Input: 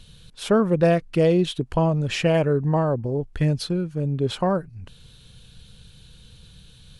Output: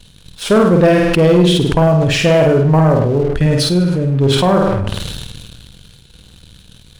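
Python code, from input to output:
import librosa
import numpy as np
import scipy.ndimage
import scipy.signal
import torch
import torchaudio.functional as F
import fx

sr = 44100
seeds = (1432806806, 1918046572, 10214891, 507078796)

y = fx.room_flutter(x, sr, wall_m=8.7, rt60_s=0.64)
y = fx.leveller(y, sr, passes=2)
y = fx.sustainer(y, sr, db_per_s=26.0)
y = y * librosa.db_to_amplitude(1.0)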